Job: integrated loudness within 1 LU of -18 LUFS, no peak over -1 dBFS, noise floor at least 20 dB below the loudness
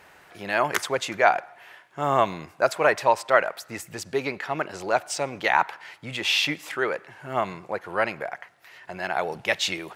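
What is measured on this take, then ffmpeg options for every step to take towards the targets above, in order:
loudness -25.5 LUFS; peak level -3.5 dBFS; loudness target -18.0 LUFS
-> -af "volume=2.37,alimiter=limit=0.891:level=0:latency=1"

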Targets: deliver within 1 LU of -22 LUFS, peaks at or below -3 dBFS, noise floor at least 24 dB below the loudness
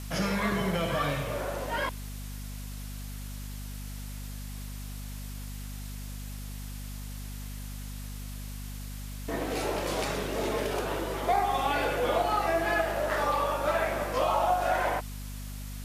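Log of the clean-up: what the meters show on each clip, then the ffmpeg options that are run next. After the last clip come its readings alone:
hum 50 Hz; highest harmonic 250 Hz; hum level -37 dBFS; noise floor -39 dBFS; noise floor target -56 dBFS; loudness -31.5 LUFS; peak level -14.0 dBFS; loudness target -22.0 LUFS
-> -af "bandreject=f=50:t=h:w=6,bandreject=f=100:t=h:w=6,bandreject=f=150:t=h:w=6,bandreject=f=200:t=h:w=6,bandreject=f=250:t=h:w=6"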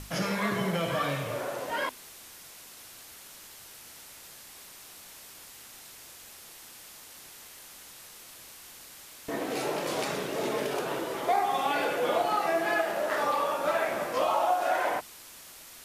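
hum not found; noise floor -49 dBFS; noise floor target -53 dBFS
-> -af "afftdn=nr=6:nf=-49"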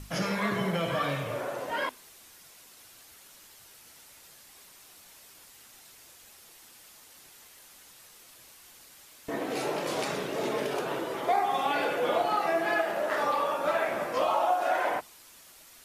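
noise floor -54 dBFS; loudness -29.5 LUFS; peak level -14.0 dBFS; loudness target -22.0 LUFS
-> -af "volume=2.37"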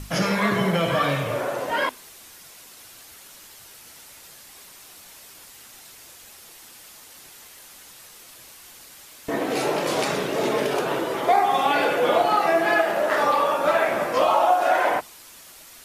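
loudness -22.0 LUFS; peak level -6.5 dBFS; noise floor -47 dBFS

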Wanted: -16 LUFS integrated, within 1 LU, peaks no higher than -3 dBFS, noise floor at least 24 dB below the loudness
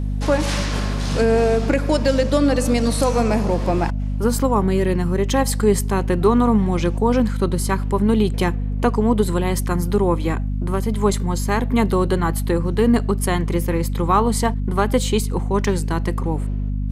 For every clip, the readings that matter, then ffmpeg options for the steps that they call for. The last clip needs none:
hum 50 Hz; highest harmonic 250 Hz; hum level -20 dBFS; loudness -20.0 LUFS; peak level -4.5 dBFS; loudness target -16.0 LUFS
-> -af "bandreject=f=50:t=h:w=6,bandreject=f=100:t=h:w=6,bandreject=f=150:t=h:w=6,bandreject=f=200:t=h:w=6,bandreject=f=250:t=h:w=6"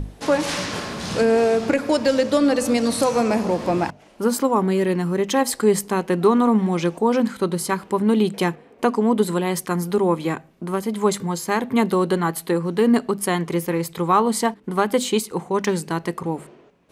hum not found; loudness -21.0 LUFS; peak level -5.5 dBFS; loudness target -16.0 LUFS
-> -af "volume=1.78,alimiter=limit=0.708:level=0:latency=1"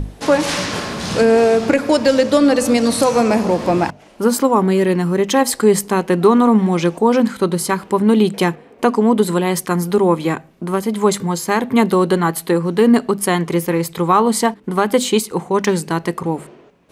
loudness -16.0 LUFS; peak level -3.0 dBFS; noise floor -44 dBFS

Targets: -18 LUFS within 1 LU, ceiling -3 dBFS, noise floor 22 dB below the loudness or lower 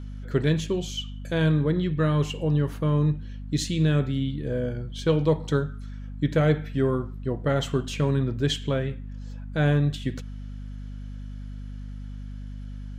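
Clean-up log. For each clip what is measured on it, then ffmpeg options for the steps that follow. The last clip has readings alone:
hum 50 Hz; highest harmonic 250 Hz; hum level -34 dBFS; loudness -25.5 LUFS; peak level -9.0 dBFS; loudness target -18.0 LUFS
-> -af "bandreject=f=50:t=h:w=6,bandreject=f=100:t=h:w=6,bandreject=f=150:t=h:w=6,bandreject=f=200:t=h:w=6,bandreject=f=250:t=h:w=6"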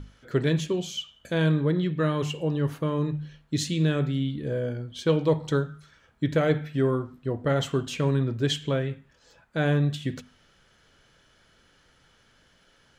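hum not found; loudness -27.0 LUFS; peak level -10.0 dBFS; loudness target -18.0 LUFS
-> -af "volume=2.82,alimiter=limit=0.708:level=0:latency=1"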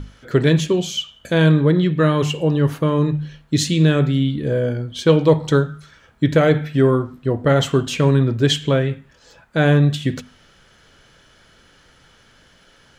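loudness -18.0 LUFS; peak level -3.0 dBFS; noise floor -53 dBFS

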